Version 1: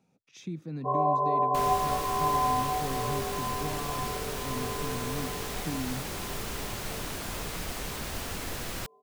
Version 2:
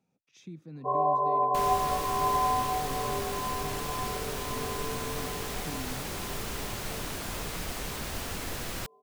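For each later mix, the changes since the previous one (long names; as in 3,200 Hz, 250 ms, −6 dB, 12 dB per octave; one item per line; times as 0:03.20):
speech −7.0 dB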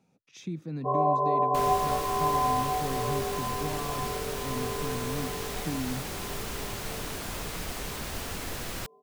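speech +8.5 dB
first sound: add spectral tilt −2.5 dB per octave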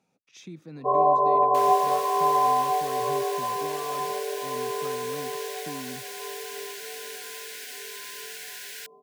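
speech: add low-shelf EQ 250 Hz −11.5 dB
first sound +5.0 dB
second sound: add linear-phase brick-wall high-pass 1,400 Hz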